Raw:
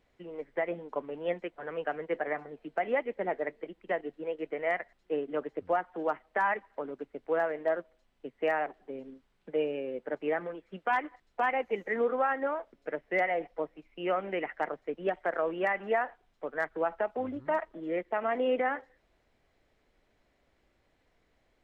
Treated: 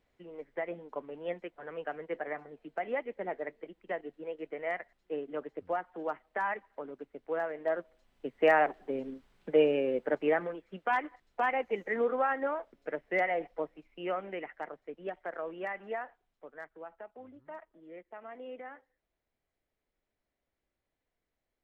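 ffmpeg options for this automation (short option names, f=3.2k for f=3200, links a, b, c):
-af "volume=6dB,afade=t=in:st=7.55:d=1.06:silence=0.298538,afade=t=out:st=9.92:d=0.73:silence=0.446684,afade=t=out:st=13.58:d=0.99:silence=0.446684,afade=t=out:st=15.85:d=0.95:silence=0.398107"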